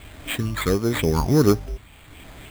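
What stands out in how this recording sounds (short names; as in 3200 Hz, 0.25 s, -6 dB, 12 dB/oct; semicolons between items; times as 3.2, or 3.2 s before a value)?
phasing stages 6, 1.4 Hz, lowest notch 450–2400 Hz; a quantiser's noise floor 8-bit, dither none; tremolo triangle 0.93 Hz, depth 60%; aliases and images of a low sample rate 5600 Hz, jitter 0%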